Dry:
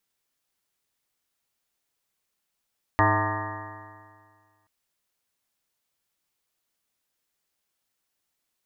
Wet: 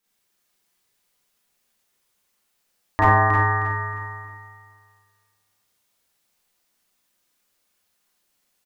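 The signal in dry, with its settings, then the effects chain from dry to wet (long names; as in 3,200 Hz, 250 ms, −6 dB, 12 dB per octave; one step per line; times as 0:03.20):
stiff-string partials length 1.68 s, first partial 102 Hz, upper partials −19/−3.5/−12/−16.5/−3.5/−6.5/1/−3/−1/−17.5/−18.5/−5.5/−3 dB, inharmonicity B 0.0037, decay 1.91 s, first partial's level −22.5 dB
on a send: repeating echo 314 ms, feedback 34%, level −7 dB
on the sum: four-comb reverb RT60 0.48 s, combs from 31 ms, DRR −7 dB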